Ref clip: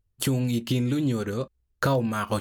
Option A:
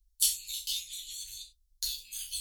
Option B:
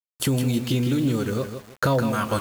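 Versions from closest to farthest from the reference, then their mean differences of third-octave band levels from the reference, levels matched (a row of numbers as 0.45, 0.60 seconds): B, A; 3.5, 23.5 decibels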